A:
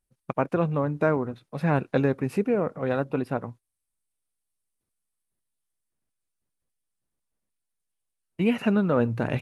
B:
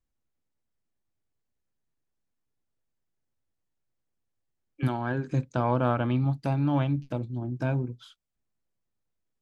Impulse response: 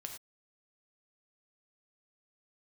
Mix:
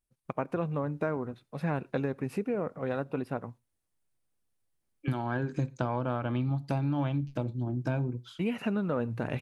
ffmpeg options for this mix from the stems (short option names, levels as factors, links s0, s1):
-filter_complex "[0:a]volume=0.531,asplit=2[s0][s1];[s1]volume=0.0891[s2];[1:a]adelay=250,volume=1,asplit=2[s3][s4];[s4]volume=0.158[s5];[2:a]atrim=start_sample=2205[s6];[s2][s5]amix=inputs=2:normalize=0[s7];[s7][s6]afir=irnorm=-1:irlink=0[s8];[s0][s3][s8]amix=inputs=3:normalize=0,acompressor=threshold=0.0501:ratio=6"